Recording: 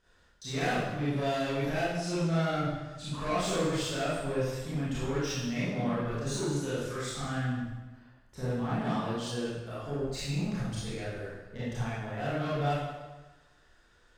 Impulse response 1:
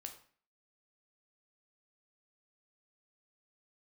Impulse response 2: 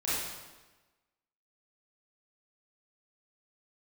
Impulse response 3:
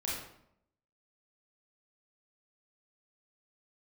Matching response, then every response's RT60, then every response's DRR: 2; 0.45 s, 1.2 s, 0.75 s; 4.5 dB, -10.5 dB, -6.0 dB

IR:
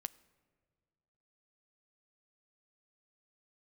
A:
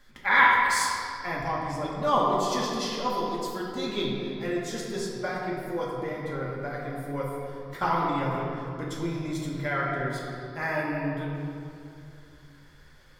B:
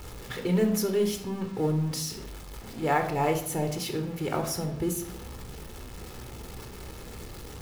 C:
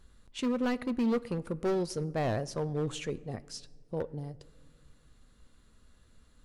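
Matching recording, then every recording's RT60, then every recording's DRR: C; 2.5 s, 0.70 s, 1.8 s; -5.0 dB, 5.0 dB, 14.5 dB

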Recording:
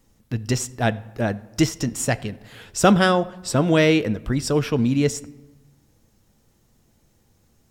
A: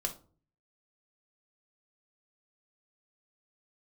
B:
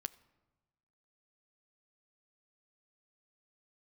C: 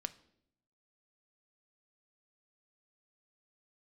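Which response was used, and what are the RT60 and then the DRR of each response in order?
B; 0.40 s, 1.2 s, 0.70 s; 3.5 dB, 13.5 dB, 10.5 dB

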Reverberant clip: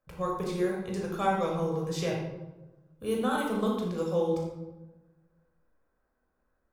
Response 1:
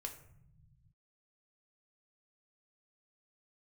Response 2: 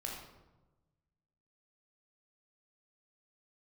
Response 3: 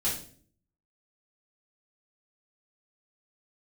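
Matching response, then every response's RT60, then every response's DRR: 2; 0.70 s, 1.1 s, 0.50 s; 3.0 dB, -2.0 dB, -9.0 dB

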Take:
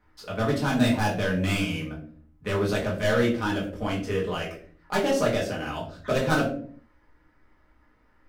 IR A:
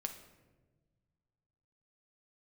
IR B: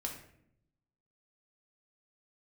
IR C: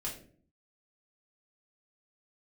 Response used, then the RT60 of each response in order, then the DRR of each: C; 1.3 s, 0.70 s, 0.50 s; 5.5 dB, 0.0 dB, -5.0 dB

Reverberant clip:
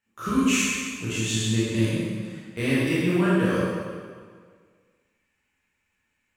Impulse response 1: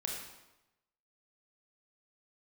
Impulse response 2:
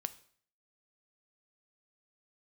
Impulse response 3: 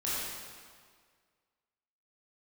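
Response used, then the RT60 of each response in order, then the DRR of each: 3; 0.95 s, 0.55 s, 1.8 s; -1.0 dB, 12.0 dB, -9.5 dB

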